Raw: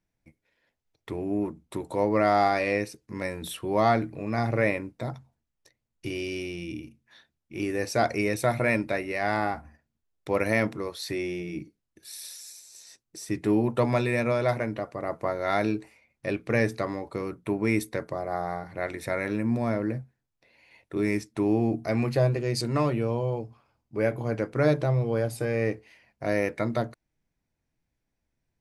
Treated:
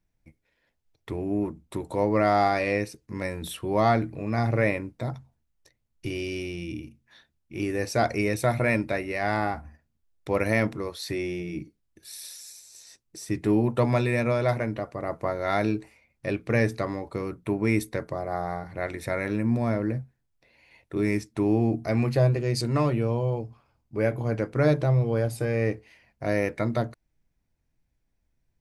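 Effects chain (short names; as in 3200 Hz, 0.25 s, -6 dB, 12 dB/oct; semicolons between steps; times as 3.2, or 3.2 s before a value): low shelf 87 Hz +10 dB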